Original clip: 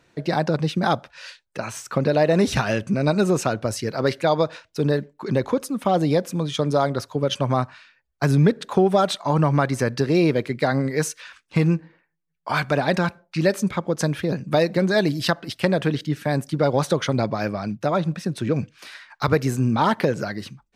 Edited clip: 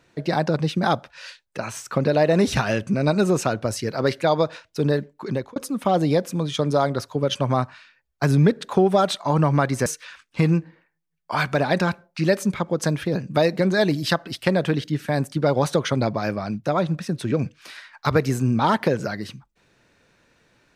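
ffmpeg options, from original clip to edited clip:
ffmpeg -i in.wav -filter_complex "[0:a]asplit=3[link_01][link_02][link_03];[link_01]atrim=end=5.56,asetpts=PTS-STARTPTS,afade=type=out:start_time=5.09:duration=0.47:curve=qsin[link_04];[link_02]atrim=start=5.56:end=9.862,asetpts=PTS-STARTPTS,afade=type=in:duration=0.004:curve=hsin[link_05];[link_03]atrim=start=11.028[link_06];[link_04][link_05]concat=n=2:v=0:a=1[link_07];[link_07][link_06]acrossfade=duration=0.004:curve1=hsin:curve2=hsin" out.wav

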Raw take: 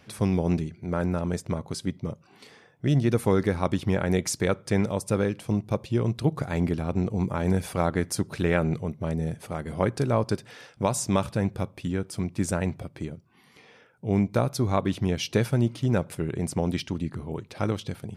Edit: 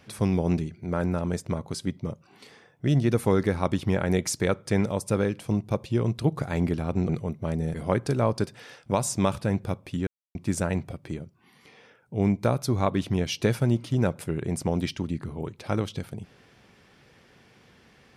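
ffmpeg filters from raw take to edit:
ffmpeg -i in.wav -filter_complex "[0:a]asplit=5[link_01][link_02][link_03][link_04][link_05];[link_01]atrim=end=7.092[link_06];[link_02]atrim=start=8.678:end=9.332[link_07];[link_03]atrim=start=9.648:end=11.98,asetpts=PTS-STARTPTS,afade=type=out:start_time=2.328:duration=0.004:curve=hsin[link_08];[link_04]atrim=start=11.98:end=12.26,asetpts=PTS-STARTPTS,volume=0[link_09];[link_05]atrim=start=12.26,asetpts=PTS-STARTPTS,afade=type=in:duration=0.004:curve=hsin[link_10];[link_06][link_07]acrossfade=duration=0.004:curve1=hsin:curve2=hsin[link_11];[link_08][link_09][link_10]concat=n=3:v=0:a=1[link_12];[link_11][link_12]acrossfade=duration=0.004:curve1=hsin:curve2=hsin" out.wav

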